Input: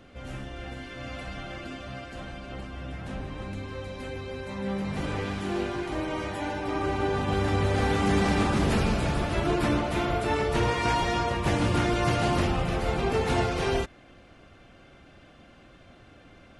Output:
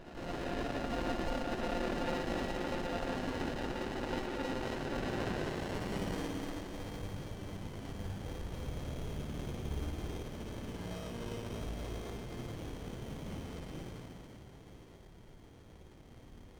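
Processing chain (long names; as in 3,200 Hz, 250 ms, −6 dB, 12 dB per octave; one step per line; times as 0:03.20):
high-pass filter 60 Hz
spectral tilt +4 dB per octave
reversed playback
downward compressor 6 to 1, threshold −39 dBFS, peak gain reduction 16.5 dB
reversed playback
band-pass filter sweep 2,100 Hz → 270 Hz, 0:05.28–0:06.26
on a send: delay that swaps between a low-pass and a high-pass 160 ms, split 1,900 Hz, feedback 81%, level −10.5 dB
on the sum: spring reverb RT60 2.5 s, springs 55 ms, chirp 55 ms, DRR −4.5 dB
voice inversion scrambler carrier 3,500 Hz
windowed peak hold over 33 samples
level +11 dB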